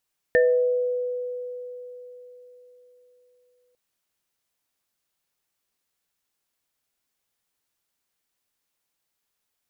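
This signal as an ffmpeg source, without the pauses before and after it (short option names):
-f lavfi -i "aevalsrc='0.188*pow(10,-3*t/4.05)*sin(2*PI*495*t)+0.0501*pow(10,-3*t/1.32)*sin(2*PI*633*t)+0.133*pow(10,-3*t/0.3)*sin(2*PI*1790*t)':d=3.4:s=44100"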